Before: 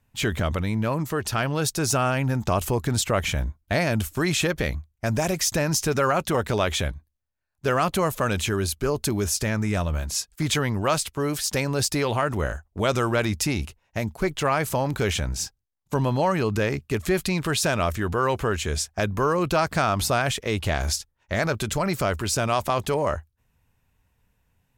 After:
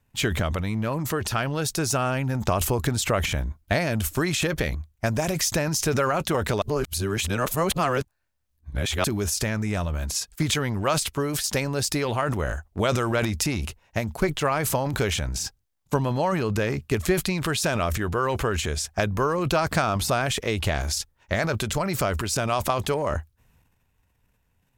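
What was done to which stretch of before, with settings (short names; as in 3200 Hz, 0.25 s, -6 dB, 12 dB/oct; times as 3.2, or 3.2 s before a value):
6.62–9.04 reverse
whole clip: transient shaper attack +6 dB, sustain +10 dB; gain -3 dB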